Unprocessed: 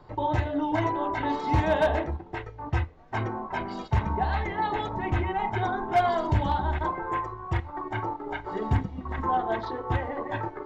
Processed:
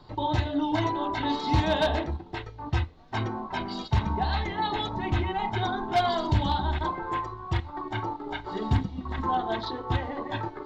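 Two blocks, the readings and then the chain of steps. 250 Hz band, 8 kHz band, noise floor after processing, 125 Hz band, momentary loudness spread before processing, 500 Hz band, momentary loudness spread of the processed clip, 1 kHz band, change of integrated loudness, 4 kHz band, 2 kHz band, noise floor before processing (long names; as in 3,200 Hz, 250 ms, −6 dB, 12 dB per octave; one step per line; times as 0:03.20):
+1.0 dB, can't be measured, −45 dBFS, +0.5 dB, 9 LU, −2.0 dB, 8 LU, −1.0 dB, −0.5 dB, +8.5 dB, −1.0 dB, −45 dBFS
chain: octave-band graphic EQ 250/500/2,000/4,000 Hz +3/−4/−4/+12 dB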